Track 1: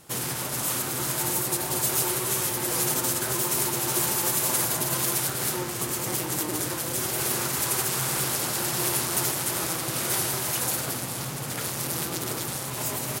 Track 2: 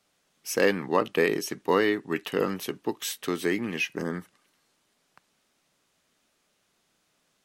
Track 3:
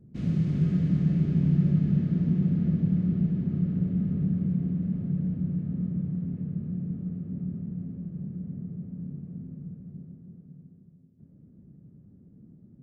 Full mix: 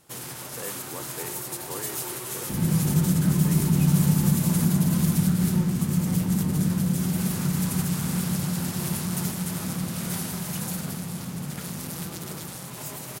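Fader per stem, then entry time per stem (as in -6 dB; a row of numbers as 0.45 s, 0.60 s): -7.0 dB, -17.0 dB, +2.5 dB; 0.00 s, 0.00 s, 2.35 s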